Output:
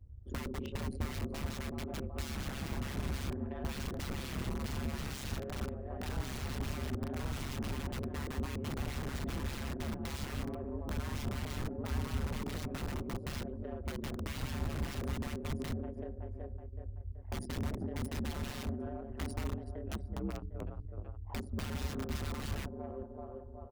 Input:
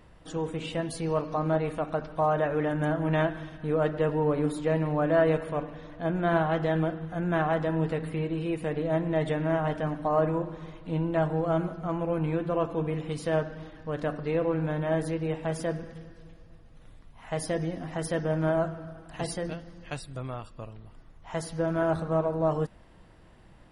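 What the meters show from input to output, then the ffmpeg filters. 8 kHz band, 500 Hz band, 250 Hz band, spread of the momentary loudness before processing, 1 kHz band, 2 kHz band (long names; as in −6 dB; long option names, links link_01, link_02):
−2.0 dB, −17.0 dB, −9.5 dB, 12 LU, −14.0 dB, −9.0 dB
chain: -filter_complex "[0:a]anlmdn=6.31,acrossover=split=200|1400|4300[link_01][link_02][link_03][link_04];[link_01]acompressor=threshold=-43dB:ratio=6[link_05];[link_05][link_02][link_03][link_04]amix=inputs=4:normalize=0,equalizer=frequency=370:width_type=o:width=0.88:gain=9.5,asplit=2[link_06][link_07];[link_07]adelay=377,lowpass=frequency=3700:poles=1,volume=-15dB,asplit=2[link_08][link_09];[link_09]adelay=377,lowpass=frequency=3700:poles=1,volume=0.43,asplit=2[link_10][link_11];[link_11]adelay=377,lowpass=frequency=3700:poles=1,volume=0.43,asplit=2[link_12][link_13];[link_13]adelay=377,lowpass=frequency=3700:poles=1,volume=0.43[link_14];[link_06][link_08][link_10][link_12][link_14]amix=inputs=5:normalize=0,aeval=exprs='(mod(17.8*val(0)+1,2)-1)/17.8':channel_layout=same,bandreject=frequency=60:width_type=h:width=6,bandreject=frequency=120:width_type=h:width=6,bandreject=frequency=180:width_type=h:width=6,bandreject=frequency=240:width_type=h:width=6,bandreject=frequency=300:width_type=h:width=6,bandreject=frequency=360:width_type=h:width=6,asoftclip=type=tanh:threshold=-29dB,lowshelf=frequency=96:gain=8,aeval=exprs='val(0)*sin(2*PI*68*n/s)':channel_layout=same,acrossover=split=290[link_15][link_16];[link_16]acompressor=threshold=-48dB:ratio=6[link_17];[link_15][link_17]amix=inputs=2:normalize=0,volume=4dB"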